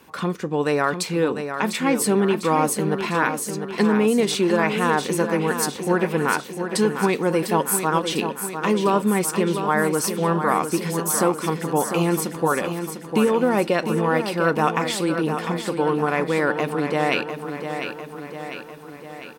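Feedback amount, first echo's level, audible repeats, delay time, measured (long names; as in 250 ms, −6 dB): 58%, −8.0 dB, 6, 700 ms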